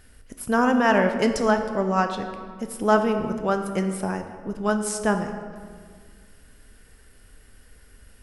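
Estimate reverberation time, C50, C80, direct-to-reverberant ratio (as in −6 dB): 1.8 s, 8.0 dB, 9.0 dB, 6.0 dB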